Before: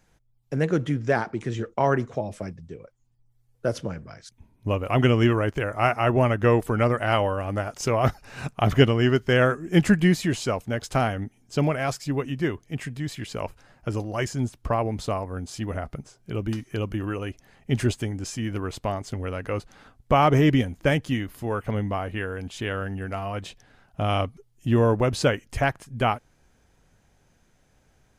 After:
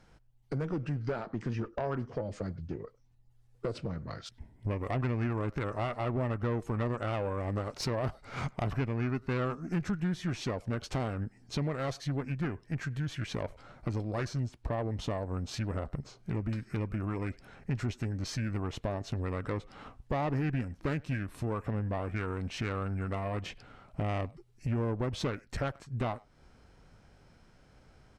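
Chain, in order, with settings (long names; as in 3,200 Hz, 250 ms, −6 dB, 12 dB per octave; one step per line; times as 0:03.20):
high-shelf EQ 6,400 Hz −9.5 dB
downward compressor 3 to 1, threshold −36 dBFS, peak gain reduction 18.5 dB
far-end echo of a speakerphone 100 ms, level −25 dB
tube saturation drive 30 dB, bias 0.45
formants moved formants −3 semitones
level +5.5 dB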